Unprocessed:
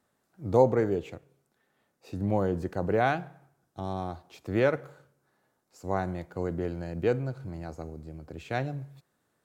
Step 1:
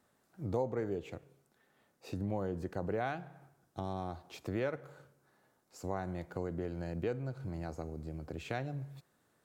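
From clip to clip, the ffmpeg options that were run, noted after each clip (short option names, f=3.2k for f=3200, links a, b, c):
-af "acompressor=threshold=-39dB:ratio=2.5,volume=1.5dB"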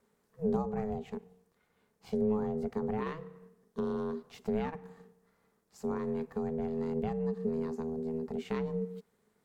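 -af "lowshelf=f=160:t=q:w=1.5:g=11.5,aeval=exprs='val(0)*sin(2*PI*320*n/s)':c=same"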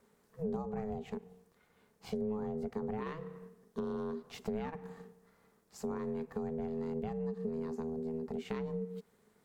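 -af "acompressor=threshold=-42dB:ratio=2.5,volume=4dB"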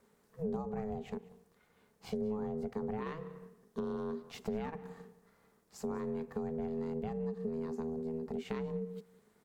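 -af "aecho=1:1:189:0.0891"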